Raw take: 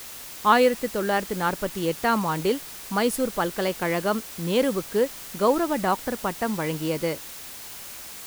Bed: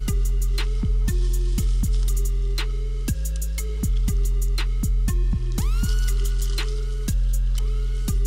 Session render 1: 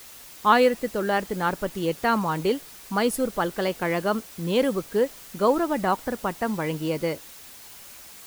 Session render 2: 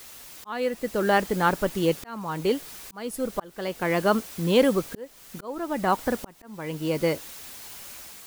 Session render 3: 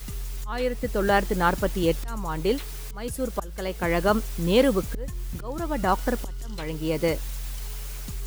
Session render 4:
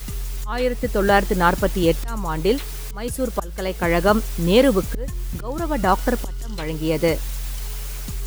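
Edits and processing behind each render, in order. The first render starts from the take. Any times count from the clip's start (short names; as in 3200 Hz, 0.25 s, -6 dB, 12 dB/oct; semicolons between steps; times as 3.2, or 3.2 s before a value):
denoiser 6 dB, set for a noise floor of -40 dBFS
auto swell 0.66 s; AGC gain up to 3 dB
add bed -12 dB
gain +5 dB; limiter -3 dBFS, peak gain reduction 1.5 dB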